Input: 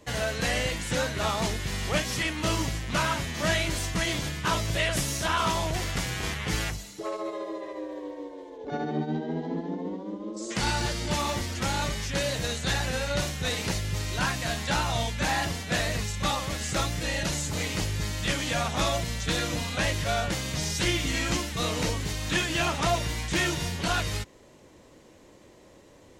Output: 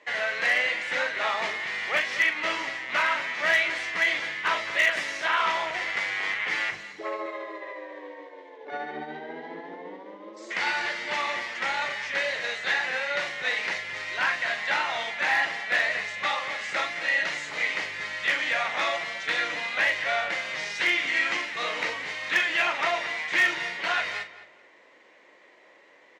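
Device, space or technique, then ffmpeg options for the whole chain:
megaphone: -filter_complex "[0:a]highpass=580,lowpass=3500,equalizer=f=2000:t=o:w=0.59:g=11,asoftclip=type=hard:threshold=0.168,asplit=2[s0][s1];[s1]adelay=40,volume=0.335[s2];[s0][s2]amix=inputs=2:normalize=0,asettb=1/sr,asplit=3[s3][s4][s5];[s3]atrim=end=6.724[s6];[s4]atrim=start=6.72:end=7.26,asetpts=PTS-STARTPTS,afade=t=in:d=0.004:c=qsin,afade=t=out:st=0.536:d=0.004:c=qsin,lowshelf=f=370:g=9[s7];[s5]atrim=start=7.256[s8];[s6][s7]acrossfade=d=0.004:c1=hsin:c2=qsin[s9];[s9][s8]acrossfade=d=0.004:c1=qsin:c2=hsin,asplit=2[s10][s11];[s11]adelay=216,lowpass=f=3500:p=1,volume=0.188,asplit=2[s12][s13];[s13]adelay=216,lowpass=f=3500:p=1,volume=0.27,asplit=2[s14][s15];[s15]adelay=216,lowpass=f=3500:p=1,volume=0.27[s16];[s10][s12][s14][s16]amix=inputs=4:normalize=0"

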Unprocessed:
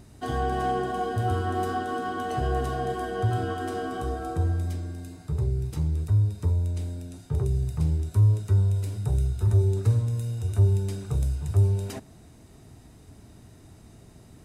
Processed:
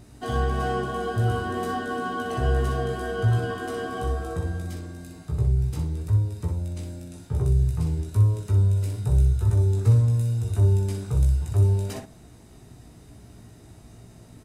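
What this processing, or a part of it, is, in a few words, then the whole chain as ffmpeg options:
slapback doubling: -filter_complex "[0:a]asplit=3[s0][s1][s2];[s1]adelay=17,volume=0.668[s3];[s2]adelay=61,volume=0.473[s4];[s0][s3][s4]amix=inputs=3:normalize=0"

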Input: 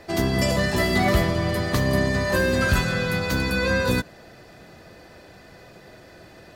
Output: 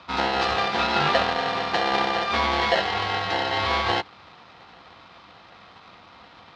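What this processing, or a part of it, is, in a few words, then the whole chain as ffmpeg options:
ring modulator pedal into a guitar cabinet: -af "aeval=exprs='val(0)*sgn(sin(2*PI*600*n/s))':c=same,highpass=95,equalizer=f=120:t=q:w=4:g=-5,equalizer=f=250:t=q:w=4:g=-6,equalizer=f=430:t=q:w=4:g=-9,equalizer=f=2300:t=q:w=4:g=-3,equalizer=f=4000:t=q:w=4:g=3,lowpass=f=4300:w=0.5412,lowpass=f=4300:w=1.3066"

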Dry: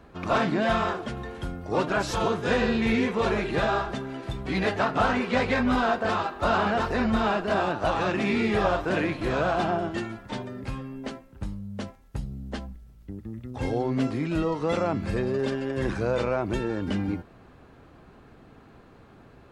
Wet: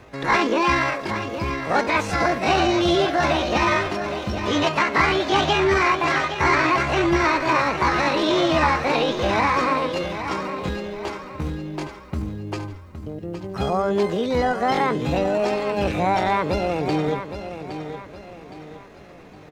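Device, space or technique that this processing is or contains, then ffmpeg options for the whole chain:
chipmunk voice: -filter_complex "[0:a]acrossover=split=4200[s0][s1];[s1]acompressor=threshold=0.001:ratio=4:attack=1:release=60[s2];[s0][s2]amix=inputs=2:normalize=0,asetrate=68011,aresample=44100,atempo=0.64842,aecho=1:1:815|1630|2445|3260:0.316|0.123|0.0481|0.0188,volume=1.78"

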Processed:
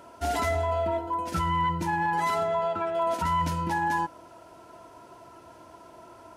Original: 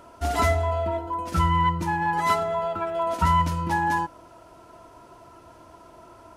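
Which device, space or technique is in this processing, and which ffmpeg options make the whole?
PA system with an anti-feedback notch: -filter_complex "[0:a]highpass=f=120:p=1,asuperstop=centerf=1200:order=4:qfactor=7.2,alimiter=limit=0.112:level=0:latency=1:release=17,asettb=1/sr,asplit=3[s0][s1][s2];[s0]atrim=end=2.474[s3];[s1]atrim=start=2.47:end=2.95,asetpts=PTS-STARTPTS,afade=t=in:d=0.004:c=qsin,afade=t=out:st=0.476:d=0.004:c=qsin,lowpass=8900[s4];[s2]atrim=start=2.946[s5];[s3][s4]acrossfade=d=0.004:c1=hsin:c2=qsin[s6];[s6][s5]acrossfade=d=0.004:c1=qsin:c2=hsin"

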